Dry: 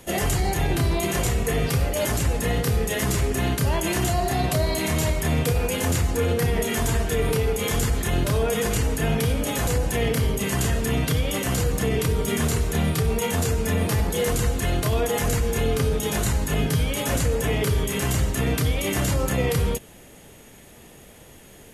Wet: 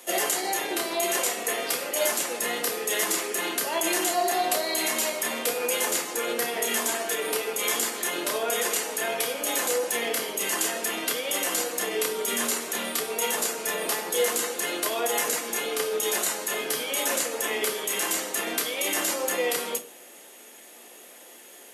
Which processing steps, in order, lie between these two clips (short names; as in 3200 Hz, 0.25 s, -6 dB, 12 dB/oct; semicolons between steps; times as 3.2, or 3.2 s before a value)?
Bessel high-pass 440 Hz, order 8; high shelf 4700 Hz +5 dB; shoebox room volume 190 m³, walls furnished, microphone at 0.88 m; gain -1 dB